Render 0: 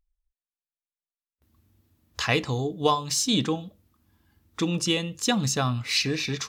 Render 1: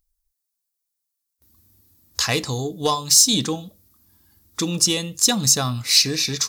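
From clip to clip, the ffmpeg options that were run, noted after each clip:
-af "aeval=exprs='0.398*(cos(1*acos(clip(val(0)/0.398,-1,1)))-cos(1*PI/2))+0.0178*(cos(5*acos(clip(val(0)/0.398,-1,1)))-cos(5*PI/2))':c=same,aexciter=amount=4.3:drive=4.3:freq=4100"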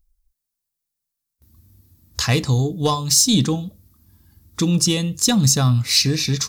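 -af "bass=f=250:g=11,treble=f=4000:g=-2"

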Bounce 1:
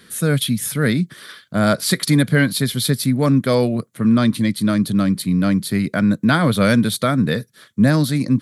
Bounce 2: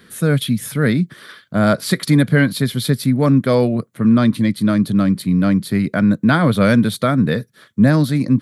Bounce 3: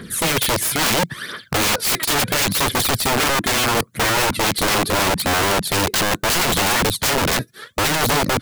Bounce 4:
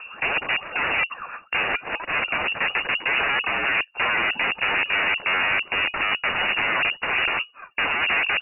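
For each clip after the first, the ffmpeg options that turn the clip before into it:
-af "equalizer=f=8700:t=o:w=2.6:g=-7.5,volume=1.26"
-af "aphaser=in_gain=1:out_gain=1:delay=3.2:decay=0.66:speed=0.74:type=triangular,acompressor=threshold=0.141:ratio=3,aeval=exprs='(mod(10*val(0)+1,2)-1)/10':c=same,volume=2.24"
-af "lowpass=f=2500:t=q:w=0.5098,lowpass=f=2500:t=q:w=0.6013,lowpass=f=2500:t=q:w=0.9,lowpass=f=2500:t=q:w=2.563,afreqshift=-2900,volume=0.708"

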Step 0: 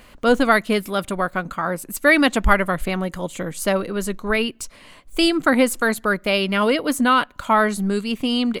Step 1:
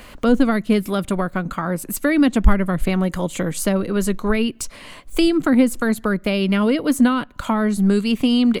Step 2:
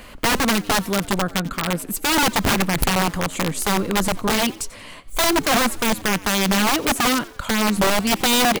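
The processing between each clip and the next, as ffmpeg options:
-filter_complex "[0:a]acrossover=split=330[s0][s1];[s1]acompressor=threshold=0.0316:ratio=5[s2];[s0][s2]amix=inputs=2:normalize=0,volume=2.11"
-filter_complex "[0:a]aeval=exprs='(mod(4.47*val(0)+1,2)-1)/4.47':c=same,asplit=4[s0][s1][s2][s3];[s1]adelay=90,afreqshift=91,volume=0.0944[s4];[s2]adelay=180,afreqshift=182,volume=0.0417[s5];[s3]adelay=270,afreqshift=273,volume=0.0182[s6];[s0][s4][s5][s6]amix=inputs=4:normalize=0"

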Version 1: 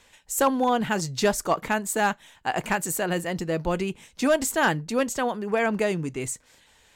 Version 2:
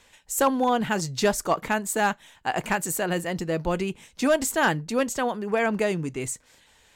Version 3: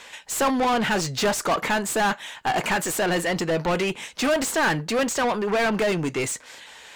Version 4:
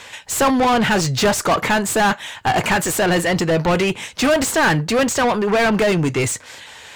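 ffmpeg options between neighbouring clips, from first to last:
-af anull
-filter_complex "[0:a]asplit=2[s0][s1];[s1]highpass=f=720:p=1,volume=17.8,asoftclip=type=tanh:threshold=0.224[s2];[s0][s2]amix=inputs=2:normalize=0,lowpass=f=4200:p=1,volume=0.501,volume=0.75"
-af "equalizer=f=100:t=o:w=0.85:g=12,volume=1.88"

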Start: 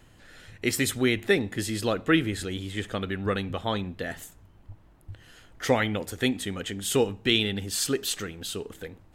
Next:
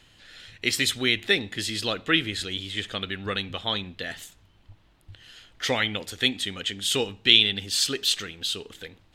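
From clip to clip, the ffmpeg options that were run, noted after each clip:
-af "equalizer=f=3600:w=0.71:g=14.5,volume=0.562"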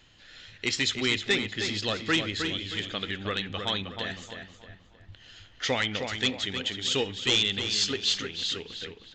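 -filter_complex "[0:a]aresample=16000,asoftclip=type=hard:threshold=0.158,aresample=44100,asplit=2[s0][s1];[s1]adelay=313,lowpass=f=3600:p=1,volume=0.501,asplit=2[s2][s3];[s3]adelay=313,lowpass=f=3600:p=1,volume=0.39,asplit=2[s4][s5];[s5]adelay=313,lowpass=f=3600:p=1,volume=0.39,asplit=2[s6][s7];[s7]adelay=313,lowpass=f=3600:p=1,volume=0.39,asplit=2[s8][s9];[s9]adelay=313,lowpass=f=3600:p=1,volume=0.39[s10];[s0][s2][s4][s6][s8][s10]amix=inputs=6:normalize=0,volume=0.794"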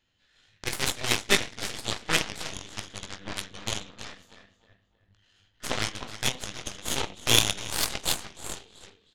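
-af "aecho=1:1:20|45|76.25|115.3|164.1:0.631|0.398|0.251|0.158|0.1,aeval=exprs='0.282*(cos(1*acos(clip(val(0)/0.282,-1,1)))-cos(1*PI/2))+0.1*(cos(3*acos(clip(val(0)/0.282,-1,1)))-cos(3*PI/2))+0.0316*(cos(4*acos(clip(val(0)/0.282,-1,1)))-cos(4*PI/2))':c=same,volume=2.24"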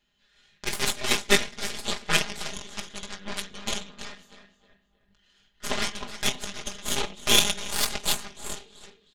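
-af "aecho=1:1:4.9:0.84,volume=0.891"

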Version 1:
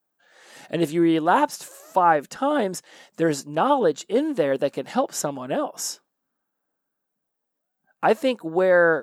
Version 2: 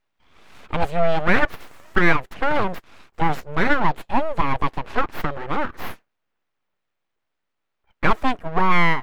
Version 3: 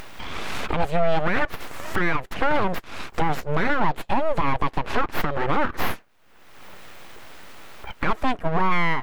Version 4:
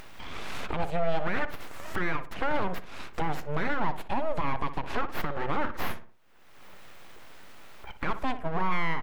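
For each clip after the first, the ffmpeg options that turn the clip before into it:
-af "aeval=exprs='abs(val(0))':c=same,bass=f=250:g=-1,treble=f=4000:g=-15,volume=1.78"
-af "acompressor=mode=upward:threshold=0.178:ratio=2.5,alimiter=limit=0.224:level=0:latency=1:release=110,volume=1.41"
-filter_complex "[0:a]asplit=2[s0][s1];[s1]adelay=60,lowpass=f=2000:p=1,volume=0.282,asplit=2[s2][s3];[s3]adelay=60,lowpass=f=2000:p=1,volume=0.42,asplit=2[s4][s5];[s5]adelay=60,lowpass=f=2000:p=1,volume=0.42,asplit=2[s6][s7];[s7]adelay=60,lowpass=f=2000:p=1,volume=0.42[s8];[s0][s2][s4][s6][s8]amix=inputs=5:normalize=0,volume=0.422"

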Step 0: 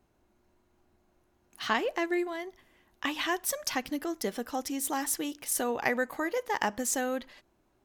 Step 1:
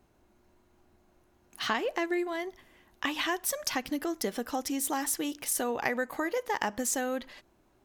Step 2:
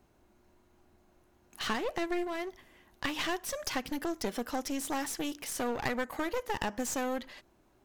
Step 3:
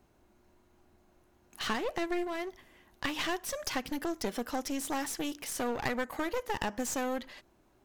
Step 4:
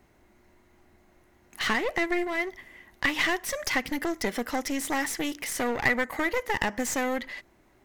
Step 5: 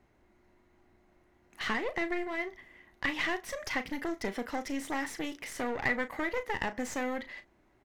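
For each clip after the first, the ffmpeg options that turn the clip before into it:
-af "acompressor=threshold=0.02:ratio=2,volume=1.58"
-filter_complex "[0:a]acrossover=split=7200[s0][s1];[s1]acompressor=threshold=0.01:ratio=4:attack=1:release=60[s2];[s0][s2]amix=inputs=2:normalize=0,aeval=exprs='clip(val(0),-1,0.0141)':c=same"
-af anull
-af "equalizer=f=2000:t=o:w=0.31:g=11,volume=1.68"
-filter_complex "[0:a]lowpass=f=3800:p=1,asplit=2[s0][s1];[s1]adelay=36,volume=0.266[s2];[s0][s2]amix=inputs=2:normalize=0,volume=0.531"

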